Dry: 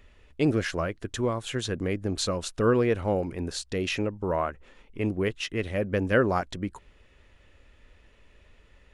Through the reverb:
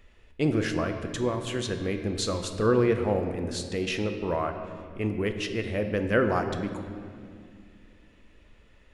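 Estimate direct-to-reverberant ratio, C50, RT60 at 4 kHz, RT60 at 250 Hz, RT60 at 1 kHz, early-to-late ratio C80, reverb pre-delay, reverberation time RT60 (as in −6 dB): 5.5 dB, 7.0 dB, 1.6 s, 3.4 s, 2.0 s, 8.5 dB, 4 ms, 2.3 s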